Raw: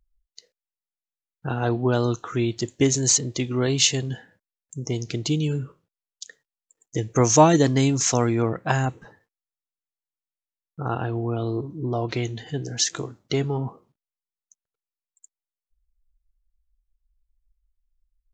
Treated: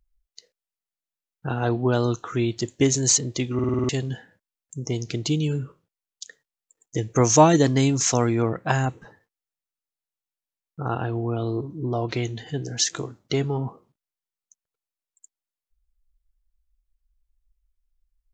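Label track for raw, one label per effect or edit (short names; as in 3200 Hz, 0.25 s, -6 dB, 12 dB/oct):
3.540000	3.540000	stutter in place 0.05 s, 7 plays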